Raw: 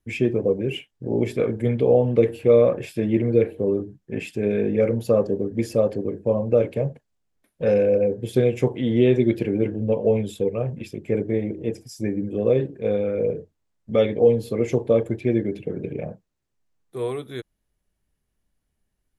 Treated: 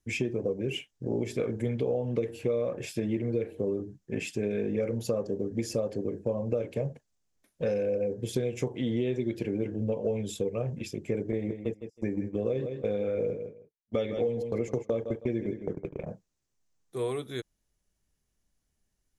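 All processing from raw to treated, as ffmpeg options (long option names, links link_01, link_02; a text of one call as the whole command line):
ffmpeg -i in.wav -filter_complex "[0:a]asettb=1/sr,asplit=3[link_01][link_02][link_03];[link_01]atrim=end=11.324[link_04];[link_02]atrim=start=11.32:end=16.07,asetpts=PTS-STARTPTS,afade=type=in:duration=0.004:curve=qsin,afade=type=out:start_time=4.746:duration=0.004:curve=qsin,agate=range=-39dB:threshold=-29dB:ratio=16:release=100:detection=peak,aecho=1:1:159|318:0.251|0.0477,atrim=end_sample=209475[link_05];[link_03]atrim=start=16.066[link_06];[link_04][link_05]acrossfade=duration=0.004:curve1=hsin:curve2=qsin[link_07];[link_07][link_06]acrossfade=duration=0.004:curve1=qsin:curve2=hsin,equalizer=frequency=6300:width=1.3:gain=9.5,acompressor=threshold=-23dB:ratio=6,volume=-3dB" out.wav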